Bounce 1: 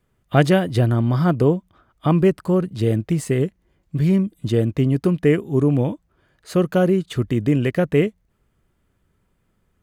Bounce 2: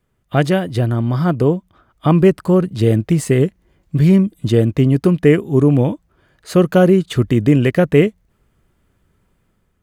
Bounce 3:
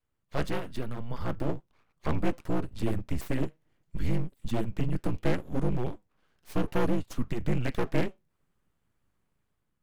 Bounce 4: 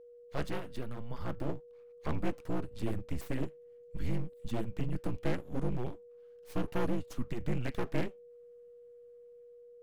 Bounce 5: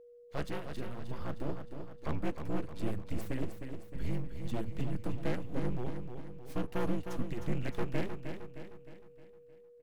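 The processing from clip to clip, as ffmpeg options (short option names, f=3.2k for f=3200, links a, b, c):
-af "dynaudnorm=f=780:g=3:m=11.5dB"
-af "flanger=delay=5.8:depth=1.3:regen=-81:speed=0.72:shape=triangular,afreqshift=-120,aeval=exprs='abs(val(0))':c=same,volume=-8.5dB"
-af "aeval=exprs='val(0)+0.00501*sin(2*PI*480*n/s)':c=same,volume=-5.5dB"
-af "aecho=1:1:309|618|927|1236|1545|1854:0.422|0.207|0.101|0.0496|0.0243|0.0119,volume=-1.5dB"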